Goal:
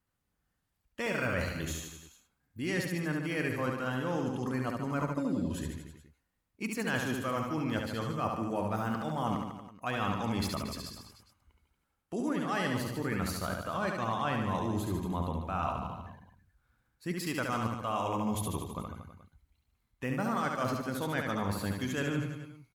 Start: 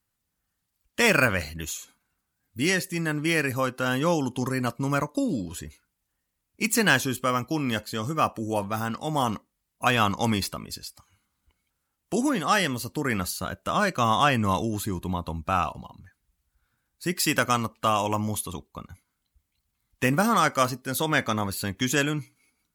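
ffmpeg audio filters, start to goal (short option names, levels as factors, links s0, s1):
-af "highshelf=f=3000:g=-10.5,areverse,acompressor=threshold=0.0282:ratio=6,areverse,aecho=1:1:70|147|231.7|324.9|427.4:0.631|0.398|0.251|0.158|0.1"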